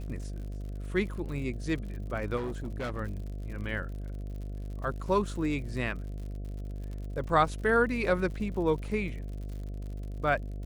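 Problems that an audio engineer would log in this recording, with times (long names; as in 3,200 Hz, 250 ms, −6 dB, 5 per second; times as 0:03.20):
mains buzz 50 Hz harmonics 14 −37 dBFS
surface crackle 73 per second −40 dBFS
0:02.36–0:02.99: clipping −30.5 dBFS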